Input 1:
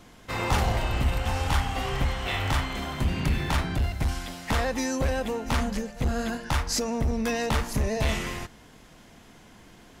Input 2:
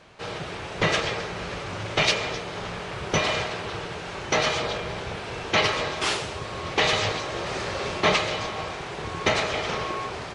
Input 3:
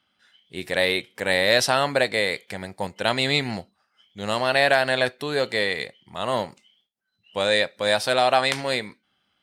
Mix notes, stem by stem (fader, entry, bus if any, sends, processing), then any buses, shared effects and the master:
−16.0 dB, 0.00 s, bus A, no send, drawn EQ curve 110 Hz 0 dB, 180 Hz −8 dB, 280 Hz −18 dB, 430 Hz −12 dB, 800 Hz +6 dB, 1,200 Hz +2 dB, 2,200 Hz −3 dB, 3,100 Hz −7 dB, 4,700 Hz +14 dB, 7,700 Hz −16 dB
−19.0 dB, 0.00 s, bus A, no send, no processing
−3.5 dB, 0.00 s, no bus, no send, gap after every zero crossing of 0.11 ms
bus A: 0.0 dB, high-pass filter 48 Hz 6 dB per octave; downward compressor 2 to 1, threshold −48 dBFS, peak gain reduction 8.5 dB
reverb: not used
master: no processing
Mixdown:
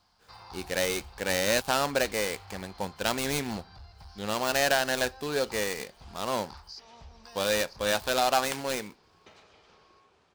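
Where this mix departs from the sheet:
stem 2 −19.0 dB → −30.5 dB
master: extra thirty-one-band graphic EQ 125 Hz −7 dB, 630 Hz −4 dB, 2,000 Hz −5 dB

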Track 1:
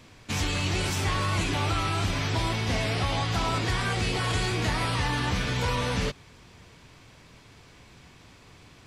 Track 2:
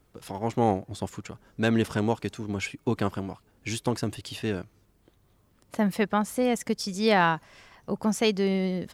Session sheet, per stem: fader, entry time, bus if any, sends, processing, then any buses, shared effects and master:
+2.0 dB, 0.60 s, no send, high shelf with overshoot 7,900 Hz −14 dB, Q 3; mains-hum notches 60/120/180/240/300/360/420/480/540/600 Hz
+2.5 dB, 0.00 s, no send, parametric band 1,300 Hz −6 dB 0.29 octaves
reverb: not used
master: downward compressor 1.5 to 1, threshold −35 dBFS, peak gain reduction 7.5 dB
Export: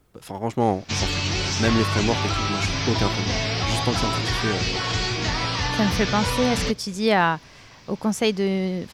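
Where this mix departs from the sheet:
stem 2: missing parametric band 1,300 Hz −6 dB 0.29 octaves
master: missing downward compressor 1.5 to 1, threshold −35 dBFS, peak gain reduction 7.5 dB

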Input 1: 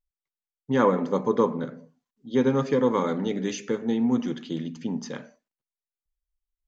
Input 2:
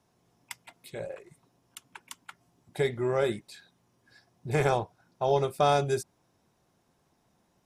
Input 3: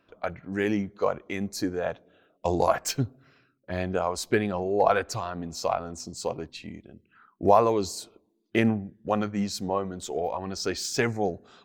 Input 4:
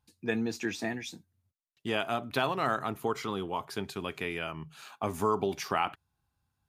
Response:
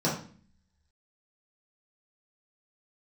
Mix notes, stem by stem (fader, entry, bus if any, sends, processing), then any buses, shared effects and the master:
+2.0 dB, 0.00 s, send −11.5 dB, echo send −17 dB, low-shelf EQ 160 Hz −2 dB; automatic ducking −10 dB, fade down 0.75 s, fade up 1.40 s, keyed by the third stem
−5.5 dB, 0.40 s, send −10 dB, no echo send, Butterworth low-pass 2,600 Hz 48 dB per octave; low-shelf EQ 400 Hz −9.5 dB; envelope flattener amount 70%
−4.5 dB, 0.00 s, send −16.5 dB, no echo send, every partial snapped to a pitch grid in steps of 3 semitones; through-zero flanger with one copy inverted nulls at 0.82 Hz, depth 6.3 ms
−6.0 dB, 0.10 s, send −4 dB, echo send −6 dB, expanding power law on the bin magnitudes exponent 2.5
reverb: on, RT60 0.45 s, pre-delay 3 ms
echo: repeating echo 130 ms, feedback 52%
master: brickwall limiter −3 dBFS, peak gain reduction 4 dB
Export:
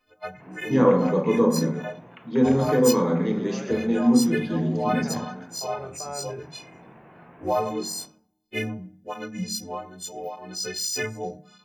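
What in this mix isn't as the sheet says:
stem 2 −5.5 dB → −14.5 dB
stem 4: muted
reverb return −6.0 dB

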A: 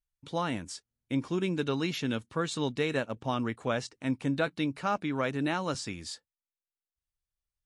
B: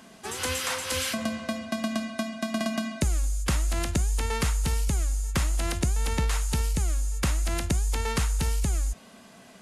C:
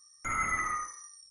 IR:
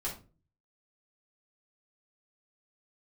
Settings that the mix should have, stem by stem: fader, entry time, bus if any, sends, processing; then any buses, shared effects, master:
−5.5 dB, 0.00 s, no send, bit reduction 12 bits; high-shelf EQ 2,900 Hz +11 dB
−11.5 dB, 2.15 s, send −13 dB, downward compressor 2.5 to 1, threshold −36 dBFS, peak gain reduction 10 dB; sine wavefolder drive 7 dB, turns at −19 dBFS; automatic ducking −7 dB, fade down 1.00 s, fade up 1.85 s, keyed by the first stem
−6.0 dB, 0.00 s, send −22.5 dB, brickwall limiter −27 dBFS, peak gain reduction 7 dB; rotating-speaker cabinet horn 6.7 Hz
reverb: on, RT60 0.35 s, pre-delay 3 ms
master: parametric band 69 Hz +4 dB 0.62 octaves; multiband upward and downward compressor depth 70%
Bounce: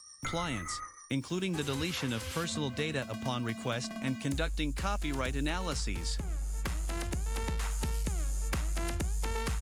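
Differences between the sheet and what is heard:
stem B: entry 2.15 s → 1.30 s
reverb return −6.5 dB

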